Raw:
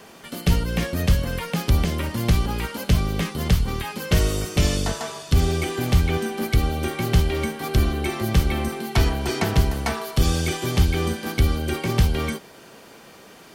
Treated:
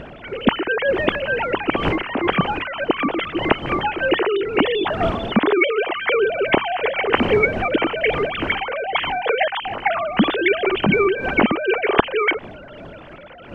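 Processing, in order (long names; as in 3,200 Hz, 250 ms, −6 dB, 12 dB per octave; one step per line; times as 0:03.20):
three sine waves on the formant tracks
wind on the microphone 450 Hz −34 dBFS
level +1 dB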